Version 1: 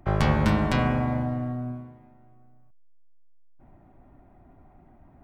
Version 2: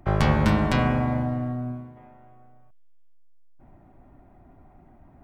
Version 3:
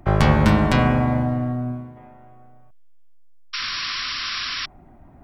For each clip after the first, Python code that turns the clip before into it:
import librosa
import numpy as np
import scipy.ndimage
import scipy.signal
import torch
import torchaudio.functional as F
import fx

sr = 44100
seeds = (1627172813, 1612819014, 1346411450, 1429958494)

y1 = fx.spec_box(x, sr, start_s=1.97, length_s=1.18, low_hz=370.0, high_hz=3700.0, gain_db=7)
y1 = F.gain(torch.from_numpy(y1), 1.5).numpy()
y2 = fx.spec_paint(y1, sr, seeds[0], shape='noise', start_s=3.53, length_s=1.13, low_hz=1000.0, high_hz=5700.0, level_db=-32.0)
y2 = F.gain(torch.from_numpy(y2), 4.5).numpy()